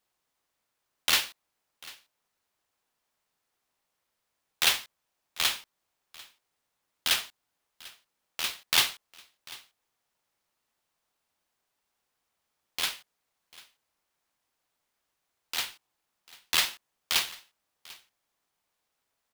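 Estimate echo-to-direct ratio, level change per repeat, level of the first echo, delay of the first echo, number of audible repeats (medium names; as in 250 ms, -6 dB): -21.5 dB, no regular repeats, -21.5 dB, 744 ms, 1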